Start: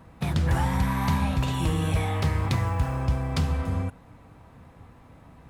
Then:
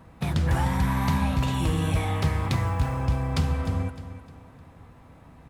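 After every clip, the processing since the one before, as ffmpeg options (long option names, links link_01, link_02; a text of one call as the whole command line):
ffmpeg -i in.wav -af "aecho=1:1:305|610|915|1220:0.224|0.0806|0.029|0.0104" out.wav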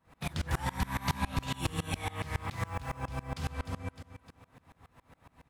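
ffmpeg -i in.wav -af "tiltshelf=frequency=720:gain=-4.5,aeval=exprs='val(0)*pow(10,-26*if(lt(mod(-7.2*n/s,1),2*abs(-7.2)/1000),1-mod(-7.2*n/s,1)/(2*abs(-7.2)/1000),(mod(-7.2*n/s,1)-2*abs(-7.2)/1000)/(1-2*abs(-7.2)/1000))/20)':channel_layout=same" out.wav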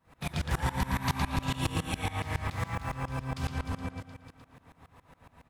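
ffmpeg -i in.wav -filter_complex "[0:a]asplit=2[link_01][link_02];[link_02]adelay=114,lowpass=frequency=5000:poles=1,volume=-3.5dB,asplit=2[link_03][link_04];[link_04]adelay=114,lowpass=frequency=5000:poles=1,volume=0.26,asplit=2[link_05][link_06];[link_06]adelay=114,lowpass=frequency=5000:poles=1,volume=0.26,asplit=2[link_07][link_08];[link_08]adelay=114,lowpass=frequency=5000:poles=1,volume=0.26[link_09];[link_01][link_03][link_05][link_07][link_09]amix=inputs=5:normalize=0,volume=1dB" out.wav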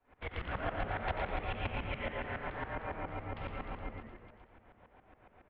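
ffmpeg -i in.wav -filter_complex "[0:a]highpass=frequency=160:width_type=q:width=0.5412,highpass=frequency=160:width_type=q:width=1.307,lowpass=frequency=3200:width_type=q:width=0.5176,lowpass=frequency=3200:width_type=q:width=0.7071,lowpass=frequency=3200:width_type=q:width=1.932,afreqshift=-230,asplit=8[link_01][link_02][link_03][link_04][link_05][link_06][link_07][link_08];[link_02]adelay=90,afreqshift=-130,volume=-8.5dB[link_09];[link_03]adelay=180,afreqshift=-260,volume=-13.2dB[link_10];[link_04]adelay=270,afreqshift=-390,volume=-18dB[link_11];[link_05]adelay=360,afreqshift=-520,volume=-22.7dB[link_12];[link_06]adelay=450,afreqshift=-650,volume=-27.4dB[link_13];[link_07]adelay=540,afreqshift=-780,volume=-32.2dB[link_14];[link_08]adelay=630,afreqshift=-910,volume=-36.9dB[link_15];[link_01][link_09][link_10][link_11][link_12][link_13][link_14][link_15]amix=inputs=8:normalize=0,volume=-3dB" out.wav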